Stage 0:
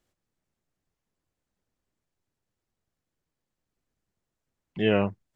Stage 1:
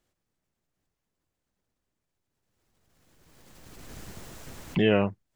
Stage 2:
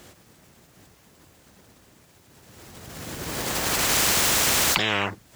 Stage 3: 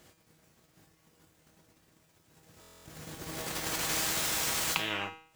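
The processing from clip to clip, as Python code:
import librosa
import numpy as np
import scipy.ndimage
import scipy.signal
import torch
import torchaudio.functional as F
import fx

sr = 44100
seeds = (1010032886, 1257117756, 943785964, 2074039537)

y1 = fx.pre_swell(x, sr, db_per_s=24.0)
y2 = scipy.signal.sosfilt(scipy.signal.butter(2, 66.0, 'highpass', fs=sr, output='sos'), y1)
y2 = fx.spectral_comp(y2, sr, ratio=10.0)
y2 = y2 * librosa.db_to_amplitude(5.5)
y3 = fx.transient(y2, sr, attack_db=7, sustain_db=-7)
y3 = fx.comb_fb(y3, sr, f0_hz=160.0, decay_s=0.52, harmonics='all', damping=0.0, mix_pct=80)
y3 = fx.buffer_glitch(y3, sr, at_s=(2.6,), block=1024, repeats=10)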